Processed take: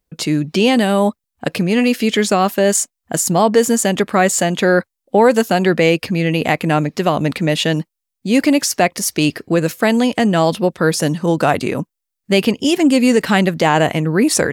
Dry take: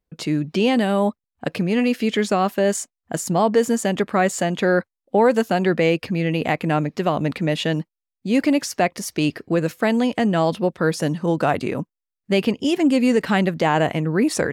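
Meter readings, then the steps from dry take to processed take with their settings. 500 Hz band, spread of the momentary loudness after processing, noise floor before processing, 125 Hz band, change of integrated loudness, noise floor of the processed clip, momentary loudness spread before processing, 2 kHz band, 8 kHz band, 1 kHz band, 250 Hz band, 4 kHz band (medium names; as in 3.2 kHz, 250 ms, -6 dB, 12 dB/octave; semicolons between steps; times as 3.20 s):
+4.5 dB, 6 LU, under -85 dBFS, +4.5 dB, +5.0 dB, -80 dBFS, 6 LU, +6.0 dB, +11.0 dB, +5.0 dB, +4.5 dB, +7.5 dB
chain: treble shelf 4.4 kHz +8.5 dB; trim +4.5 dB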